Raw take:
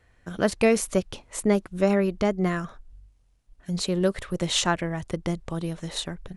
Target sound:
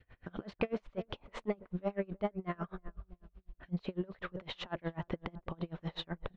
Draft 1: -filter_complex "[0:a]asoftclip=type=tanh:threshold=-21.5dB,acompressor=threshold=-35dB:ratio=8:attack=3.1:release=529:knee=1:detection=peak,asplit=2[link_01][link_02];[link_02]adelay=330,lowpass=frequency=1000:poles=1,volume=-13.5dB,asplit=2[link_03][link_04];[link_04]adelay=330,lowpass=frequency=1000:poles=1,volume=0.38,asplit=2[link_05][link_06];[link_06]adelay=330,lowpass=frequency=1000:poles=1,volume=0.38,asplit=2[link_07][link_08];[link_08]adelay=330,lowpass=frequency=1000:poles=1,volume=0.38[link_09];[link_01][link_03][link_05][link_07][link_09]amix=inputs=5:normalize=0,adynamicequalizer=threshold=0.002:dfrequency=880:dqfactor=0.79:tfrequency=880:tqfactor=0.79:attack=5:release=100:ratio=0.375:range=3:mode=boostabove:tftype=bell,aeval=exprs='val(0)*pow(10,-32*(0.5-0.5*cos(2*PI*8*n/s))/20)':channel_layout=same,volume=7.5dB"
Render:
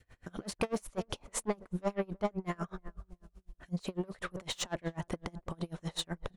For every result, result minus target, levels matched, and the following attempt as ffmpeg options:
soft clipping: distortion +8 dB; 4,000 Hz band +3.0 dB
-filter_complex "[0:a]asoftclip=type=tanh:threshold=-14dB,acompressor=threshold=-35dB:ratio=8:attack=3.1:release=529:knee=1:detection=peak,asplit=2[link_01][link_02];[link_02]adelay=330,lowpass=frequency=1000:poles=1,volume=-13.5dB,asplit=2[link_03][link_04];[link_04]adelay=330,lowpass=frequency=1000:poles=1,volume=0.38,asplit=2[link_05][link_06];[link_06]adelay=330,lowpass=frequency=1000:poles=1,volume=0.38,asplit=2[link_07][link_08];[link_08]adelay=330,lowpass=frequency=1000:poles=1,volume=0.38[link_09];[link_01][link_03][link_05][link_07][link_09]amix=inputs=5:normalize=0,adynamicequalizer=threshold=0.002:dfrequency=880:dqfactor=0.79:tfrequency=880:tqfactor=0.79:attack=5:release=100:ratio=0.375:range=3:mode=boostabove:tftype=bell,aeval=exprs='val(0)*pow(10,-32*(0.5-0.5*cos(2*PI*8*n/s))/20)':channel_layout=same,volume=7.5dB"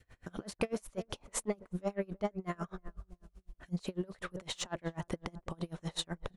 4,000 Hz band +3.0 dB
-filter_complex "[0:a]asoftclip=type=tanh:threshold=-14dB,acompressor=threshold=-35dB:ratio=8:attack=3.1:release=529:knee=1:detection=peak,asplit=2[link_01][link_02];[link_02]adelay=330,lowpass=frequency=1000:poles=1,volume=-13.5dB,asplit=2[link_03][link_04];[link_04]adelay=330,lowpass=frequency=1000:poles=1,volume=0.38,asplit=2[link_05][link_06];[link_06]adelay=330,lowpass=frequency=1000:poles=1,volume=0.38,asplit=2[link_07][link_08];[link_08]adelay=330,lowpass=frequency=1000:poles=1,volume=0.38[link_09];[link_01][link_03][link_05][link_07][link_09]amix=inputs=5:normalize=0,adynamicequalizer=threshold=0.002:dfrequency=880:dqfactor=0.79:tfrequency=880:tqfactor=0.79:attack=5:release=100:ratio=0.375:range=3:mode=boostabove:tftype=bell,lowpass=frequency=3500:width=0.5412,lowpass=frequency=3500:width=1.3066,aeval=exprs='val(0)*pow(10,-32*(0.5-0.5*cos(2*PI*8*n/s))/20)':channel_layout=same,volume=7.5dB"

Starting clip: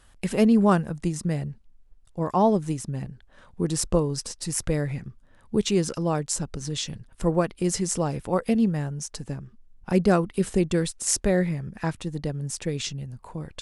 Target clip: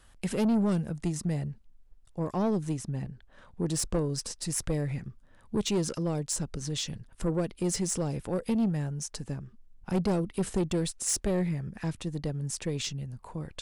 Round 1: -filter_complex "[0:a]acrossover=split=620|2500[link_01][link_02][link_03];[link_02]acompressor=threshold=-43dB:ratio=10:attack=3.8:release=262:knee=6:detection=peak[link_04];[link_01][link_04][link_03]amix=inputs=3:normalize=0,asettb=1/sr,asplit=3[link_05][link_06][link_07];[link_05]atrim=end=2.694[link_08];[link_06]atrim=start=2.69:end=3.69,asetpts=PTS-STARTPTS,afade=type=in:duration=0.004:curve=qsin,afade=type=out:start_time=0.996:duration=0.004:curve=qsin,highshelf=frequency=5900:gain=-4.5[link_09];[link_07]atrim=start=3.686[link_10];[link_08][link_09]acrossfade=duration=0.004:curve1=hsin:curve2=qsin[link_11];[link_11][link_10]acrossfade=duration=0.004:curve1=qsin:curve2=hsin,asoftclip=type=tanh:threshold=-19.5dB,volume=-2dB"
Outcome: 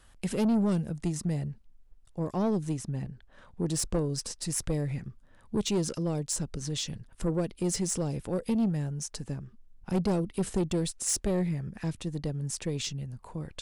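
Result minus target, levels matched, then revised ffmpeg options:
downward compressor: peak gain reduction +6 dB
-filter_complex "[0:a]acrossover=split=620|2500[link_01][link_02][link_03];[link_02]acompressor=threshold=-36.5dB:ratio=10:attack=3.8:release=262:knee=6:detection=peak[link_04];[link_01][link_04][link_03]amix=inputs=3:normalize=0,asettb=1/sr,asplit=3[link_05][link_06][link_07];[link_05]atrim=end=2.694[link_08];[link_06]atrim=start=2.69:end=3.69,asetpts=PTS-STARTPTS,afade=type=in:duration=0.004:curve=qsin,afade=type=out:start_time=0.996:duration=0.004:curve=qsin,highshelf=frequency=5900:gain=-4.5[link_09];[link_07]atrim=start=3.686[link_10];[link_08][link_09]acrossfade=duration=0.004:curve1=hsin:curve2=qsin[link_11];[link_11][link_10]acrossfade=duration=0.004:curve1=qsin:curve2=hsin,asoftclip=type=tanh:threshold=-19.5dB,volume=-2dB"

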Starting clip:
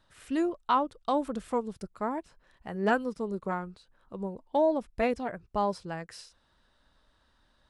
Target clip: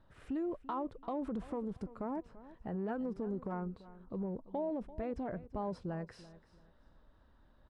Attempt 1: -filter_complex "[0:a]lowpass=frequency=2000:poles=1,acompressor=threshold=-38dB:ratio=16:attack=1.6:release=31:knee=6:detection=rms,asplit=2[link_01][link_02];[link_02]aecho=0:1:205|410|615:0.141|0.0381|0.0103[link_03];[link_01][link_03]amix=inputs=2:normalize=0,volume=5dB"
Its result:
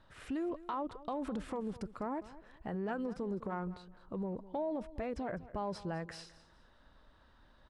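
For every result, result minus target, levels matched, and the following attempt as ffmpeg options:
echo 134 ms early; 2,000 Hz band +5.5 dB
-filter_complex "[0:a]lowpass=frequency=2000:poles=1,acompressor=threshold=-38dB:ratio=16:attack=1.6:release=31:knee=6:detection=rms,asplit=2[link_01][link_02];[link_02]aecho=0:1:339|678|1017:0.141|0.0381|0.0103[link_03];[link_01][link_03]amix=inputs=2:normalize=0,volume=5dB"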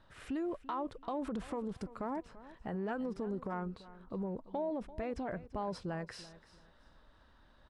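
2,000 Hz band +5.5 dB
-filter_complex "[0:a]lowpass=frequency=560:poles=1,acompressor=threshold=-38dB:ratio=16:attack=1.6:release=31:knee=6:detection=rms,asplit=2[link_01][link_02];[link_02]aecho=0:1:339|678|1017:0.141|0.0381|0.0103[link_03];[link_01][link_03]amix=inputs=2:normalize=0,volume=5dB"

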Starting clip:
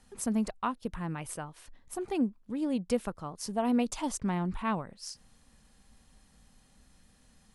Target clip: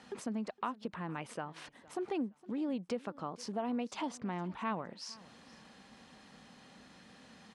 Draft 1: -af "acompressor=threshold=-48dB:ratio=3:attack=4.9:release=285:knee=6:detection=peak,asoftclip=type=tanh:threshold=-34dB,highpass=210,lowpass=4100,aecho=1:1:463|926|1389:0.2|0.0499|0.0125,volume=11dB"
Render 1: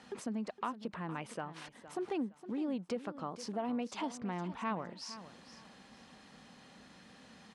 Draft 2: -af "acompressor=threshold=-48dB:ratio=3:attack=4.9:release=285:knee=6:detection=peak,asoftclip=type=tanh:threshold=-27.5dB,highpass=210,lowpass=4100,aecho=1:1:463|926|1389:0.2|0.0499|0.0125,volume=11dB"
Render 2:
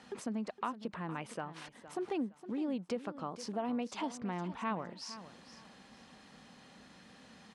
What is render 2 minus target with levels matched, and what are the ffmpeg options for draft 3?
echo-to-direct +7.5 dB
-af "acompressor=threshold=-48dB:ratio=3:attack=4.9:release=285:knee=6:detection=peak,asoftclip=type=tanh:threshold=-27.5dB,highpass=210,lowpass=4100,aecho=1:1:463|926:0.0841|0.021,volume=11dB"

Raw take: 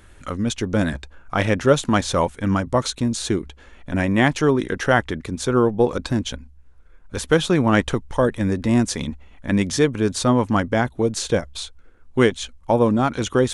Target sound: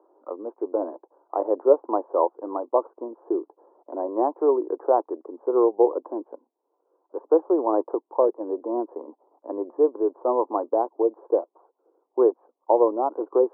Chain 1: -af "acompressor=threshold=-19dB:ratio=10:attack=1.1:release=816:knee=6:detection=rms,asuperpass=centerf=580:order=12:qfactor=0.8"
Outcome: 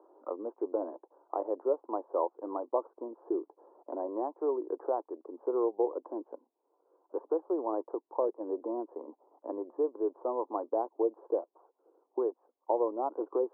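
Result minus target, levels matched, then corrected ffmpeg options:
downward compressor: peak gain reduction +13.5 dB
-af "asuperpass=centerf=580:order=12:qfactor=0.8"

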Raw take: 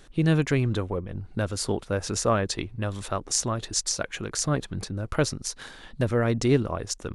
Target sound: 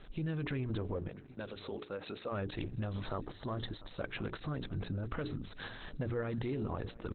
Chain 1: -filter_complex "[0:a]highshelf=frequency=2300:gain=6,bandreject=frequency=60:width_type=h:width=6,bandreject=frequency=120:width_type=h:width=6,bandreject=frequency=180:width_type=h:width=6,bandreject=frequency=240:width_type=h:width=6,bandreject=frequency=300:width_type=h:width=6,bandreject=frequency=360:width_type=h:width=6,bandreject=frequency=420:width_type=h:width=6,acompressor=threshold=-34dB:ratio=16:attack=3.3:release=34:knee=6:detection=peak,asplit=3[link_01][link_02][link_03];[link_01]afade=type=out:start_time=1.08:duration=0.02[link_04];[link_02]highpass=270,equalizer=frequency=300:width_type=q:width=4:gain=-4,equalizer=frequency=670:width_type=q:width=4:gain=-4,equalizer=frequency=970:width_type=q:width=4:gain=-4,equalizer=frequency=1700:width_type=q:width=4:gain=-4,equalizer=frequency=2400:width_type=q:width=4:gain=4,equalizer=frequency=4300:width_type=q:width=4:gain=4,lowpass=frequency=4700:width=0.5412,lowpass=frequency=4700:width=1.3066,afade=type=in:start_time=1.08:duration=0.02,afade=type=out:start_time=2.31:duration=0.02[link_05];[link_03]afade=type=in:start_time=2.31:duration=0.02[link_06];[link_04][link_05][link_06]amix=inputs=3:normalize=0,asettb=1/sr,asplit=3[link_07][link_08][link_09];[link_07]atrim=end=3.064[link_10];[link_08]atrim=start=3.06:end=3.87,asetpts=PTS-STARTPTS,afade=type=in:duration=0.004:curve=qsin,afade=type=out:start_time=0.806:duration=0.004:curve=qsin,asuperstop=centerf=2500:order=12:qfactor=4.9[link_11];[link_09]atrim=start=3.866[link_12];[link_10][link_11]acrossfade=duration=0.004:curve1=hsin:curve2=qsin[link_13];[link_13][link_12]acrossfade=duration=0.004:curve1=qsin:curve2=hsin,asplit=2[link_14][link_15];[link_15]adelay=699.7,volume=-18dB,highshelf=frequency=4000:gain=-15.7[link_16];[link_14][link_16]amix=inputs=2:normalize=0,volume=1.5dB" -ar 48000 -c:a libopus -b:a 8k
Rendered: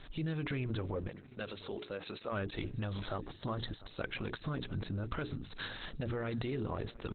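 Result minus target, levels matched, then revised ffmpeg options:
4,000 Hz band +3.0 dB
-filter_complex "[0:a]highshelf=frequency=2300:gain=-2.5,bandreject=frequency=60:width_type=h:width=6,bandreject=frequency=120:width_type=h:width=6,bandreject=frequency=180:width_type=h:width=6,bandreject=frequency=240:width_type=h:width=6,bandreject=frequency=300:width_type=h:width=6,bandreject=frequency=360:width_type=h:width=6,bandreject=frequency=420:width_type=h:width=6,acompressor=threshold=-34dB:ratio=16:attack=3.3:release=34:knee=6:detection=peak,asplit=3[link_01][link_02][link_03];[link_01]afade=type=out:start_time=1.08:duration=0.02[link_04];[link_02]highpass=270,equalizer=frequency=300:width_type=q:width=4:gain=-4,equalizer=frequency=670:width_type=q:width=4:gain=-4,equalizer=frequency=970:width_type=q:width=4:gain=-4,equalizer=frequency=1700:width_type=q:width=4:gain=-4,equalizer=frequency=2400:width_type=q:width=4:gain=4,equalizer=frequency=4300:width_type=q:width=4:gain=4,lowpass=frequency=4700:width=0.5412,lowpass=frequency=4700:width=1.3066,afade=type=in:start_time=1.08:duration=0.02,afade=type=out:start_time=2.31:duration=0.02[link_05];[link_03]afade=type=in:start_time=2.31:duration=0.02[link_06];[link_04][link_05][link_06]amix=inputs=3:normalize=0,asettb=1/sr,asplit=3[link_07][link_08][link_09];[link_07]atrim=end=3.064[link_10];[link_08]atrim=start=3.06:end=3.87,asetpts=PTS-STARTPTS,afade=type=in:duration=0.004:curve=qsin,afade=type=out:start_time=0.806:duration=0.004:curve=qsin,asuperstop=centerf=2500:order=12:qfactor=4.9[link_11];[link_09]atrim=start=3.866[link_12];[link_10][link_11]acrossfade=duration=0.004:curve1=hsin:curve2=qsin[link_13];[link_13][link_12]acrossfade=duration=0.004:curve1=qsin:curve2=hsin,asplit=2[link_14][link_15];[link_15]adelay=699.7,volume=-18dB,highshelf=frequency=4000:gain=-15.7[link_16];[link_14][link_16]amix=inputs=2:normalize=0,volume=1.5dB" -ar 48000 -c:a libopus -b:a 8k

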